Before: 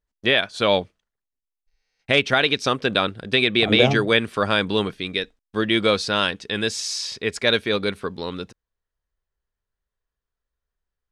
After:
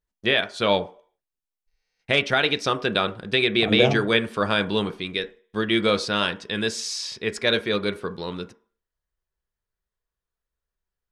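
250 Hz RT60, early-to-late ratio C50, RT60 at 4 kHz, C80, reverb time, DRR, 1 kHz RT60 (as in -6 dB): 0.40 s, 17.5 dB, 0.50 s, 21.5 dB, 0.45 s, 9.0 dB, 0.50 s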